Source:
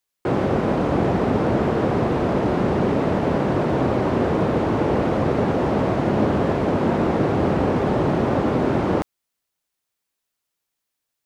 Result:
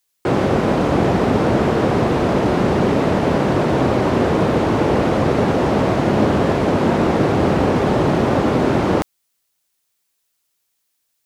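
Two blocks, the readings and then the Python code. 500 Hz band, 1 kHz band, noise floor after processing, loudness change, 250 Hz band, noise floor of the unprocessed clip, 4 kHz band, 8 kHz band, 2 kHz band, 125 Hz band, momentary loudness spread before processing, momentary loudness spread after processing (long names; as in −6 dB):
+3.5 dB, +4.0 dB, −71 dBFS, +4.0 dB, +3.5 dB, −81 dBFS, +8.0 dB, can't be measured, +5.5 dB, +3.5 dB, 1 LU, 1 LU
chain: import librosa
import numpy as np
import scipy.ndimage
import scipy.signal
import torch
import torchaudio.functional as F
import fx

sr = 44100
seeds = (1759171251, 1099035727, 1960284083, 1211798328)

y = fx.high_shelf(x, sr, hz=2900.0, db=7.5)
y = y * librosa.db_to_amplitude(3.5)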